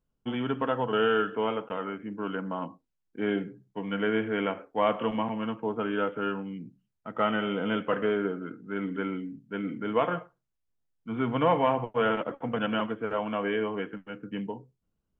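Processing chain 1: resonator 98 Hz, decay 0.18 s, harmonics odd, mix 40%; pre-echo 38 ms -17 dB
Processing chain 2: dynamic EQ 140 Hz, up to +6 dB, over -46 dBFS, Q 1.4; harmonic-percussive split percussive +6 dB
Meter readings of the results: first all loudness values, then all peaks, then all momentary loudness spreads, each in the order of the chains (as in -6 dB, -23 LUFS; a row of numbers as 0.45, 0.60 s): -33.5, -27.0 LUFS; -14.5, -7.0 dBFS; 13, 11 LU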